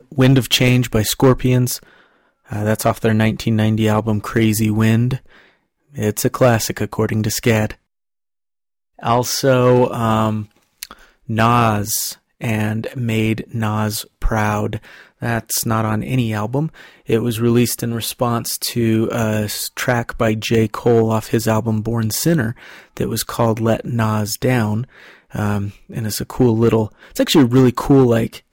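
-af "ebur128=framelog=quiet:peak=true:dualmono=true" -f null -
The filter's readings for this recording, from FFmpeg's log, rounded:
Integrated loudness:
  I:         -14.6 LUFS
  Threshold: -25.0 LUFS
Loudness range:
  LRA:         3.3 LU
  Threshold: -35.6 LUFS
  LRA low:   -17.3 LUFS
  LRA high:  -14.1 LUFS
True peak:
  Peak:       -2.1 dBFS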